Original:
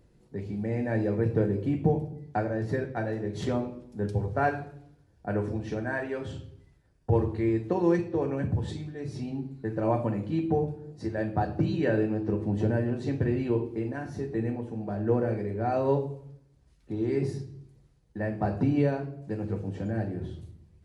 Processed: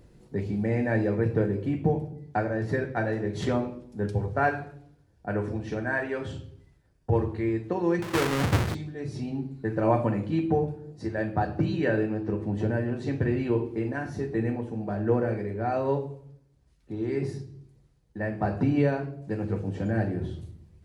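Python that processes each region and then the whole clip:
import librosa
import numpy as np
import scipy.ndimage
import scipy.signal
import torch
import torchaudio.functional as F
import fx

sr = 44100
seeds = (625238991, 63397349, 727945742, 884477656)

y = fx.chain(x, sr, fx.halfwave_hold(),
    fx.doppler_dist(depth_ms=0.46), at=(8.02, 8.75))
y = fx.dynamic_eq(y, sr, hz=1700.0, q=0.85, threshold_db=-46.0, ratio=4.0, max_db=4)
y = fx.rider(y, sr, range_db=10, speed_s=2.0)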